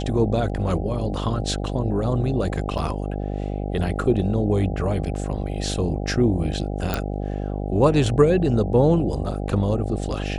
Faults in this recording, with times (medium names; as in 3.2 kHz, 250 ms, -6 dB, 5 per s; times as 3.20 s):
buzz 50 Hz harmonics 16 -27 dBFS
2.78–2.79 s: dropout 5.3 ms
6.94 s: pop